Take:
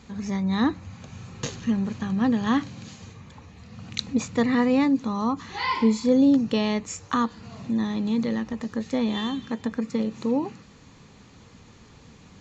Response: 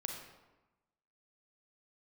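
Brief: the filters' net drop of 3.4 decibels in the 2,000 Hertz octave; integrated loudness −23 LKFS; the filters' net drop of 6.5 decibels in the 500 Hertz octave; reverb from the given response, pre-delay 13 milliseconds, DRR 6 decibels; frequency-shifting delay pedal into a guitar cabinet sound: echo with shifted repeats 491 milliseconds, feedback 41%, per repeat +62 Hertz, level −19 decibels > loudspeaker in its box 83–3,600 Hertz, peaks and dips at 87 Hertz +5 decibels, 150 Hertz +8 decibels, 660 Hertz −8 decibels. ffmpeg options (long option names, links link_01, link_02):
-filter_complex "[0:a]equalizer=frequency=500:width_type=o:gain=-5.5,equalizer=frequency=2000:width_type=o:gain=-3.5,asplit=2[link_01][link_02];[1:a]atrim=start_sample=2205,adelay=13[link_03];[link_02][link_03]afir=irnorm=-1:irlink=0,volume=-6dB[link_04];[link_01][link_04]amix=inputs=2:normalize=0,asplit=4[link_05][link_06][link_07][link_08];[link_06]adelay=491,afreqshift=62,volume=-19dB[link_09];[link_07]adelay=982,afreqshift=124,volume=-26.7dB[link_10];[link_08]adelay=1473,afreqshift=186,volume=-34.5dB[link_11];[link_05][link_09][link_10][link_11]amix=inputs=4:normalize=0,highpass=83,equalizer=frequency=87:width_type=q:width=4:gain=5,equalizer=frequency=150:width_type=q:width=4:gain=8,equalizer=frequency=660:width_type=q:width=4:gain=-8,lowpass=frequency=3600:width=0.5412,lowpass=frequency=3600:width=1.3066,volume=2.5dB"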